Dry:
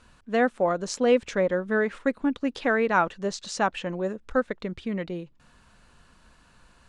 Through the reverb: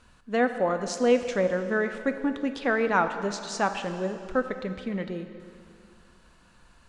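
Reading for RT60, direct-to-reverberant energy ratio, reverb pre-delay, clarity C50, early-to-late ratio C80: 2.5 s, 8.0 dB, 5 ms, 9.0 dB, 10.0 dB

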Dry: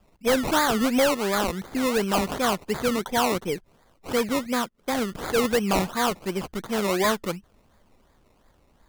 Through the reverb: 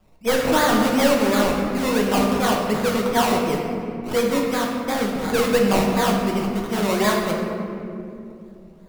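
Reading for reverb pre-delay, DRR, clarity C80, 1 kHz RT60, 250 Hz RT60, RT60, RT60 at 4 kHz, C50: 5 ms, -1.0 dB, 3.5 dB, 2.2 s, 4.5 s, 2.7 s, 1.3 s, 2.0 dB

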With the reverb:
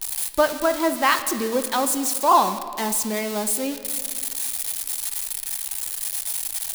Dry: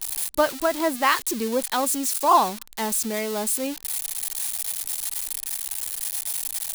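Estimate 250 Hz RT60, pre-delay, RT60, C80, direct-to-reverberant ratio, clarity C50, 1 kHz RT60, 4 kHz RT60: 2.4 s, 3 ms, 2.1 s, 12.0 dB, 9.0 dB, 11.0 dB, 1.9 s, 1.5 s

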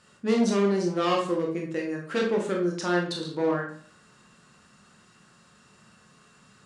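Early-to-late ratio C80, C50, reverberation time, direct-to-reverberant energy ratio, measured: 10.5 dB, 5.0 dB, 0.50 s, -0.5 dB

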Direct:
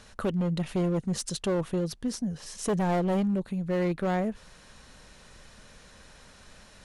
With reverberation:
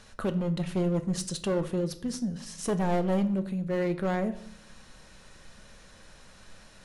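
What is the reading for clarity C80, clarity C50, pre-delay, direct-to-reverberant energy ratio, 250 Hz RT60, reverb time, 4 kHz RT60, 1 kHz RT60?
18.0 dB, 14.5 dB, 5 ms, 8.5 dB, 0.85 s, 0.60 s, 0.45 s, 0.55 s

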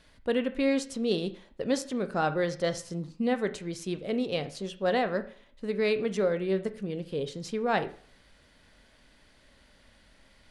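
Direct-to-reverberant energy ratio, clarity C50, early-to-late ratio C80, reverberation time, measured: 10.0 dB, 14.5 dB, 19.0 dB, 0.50 s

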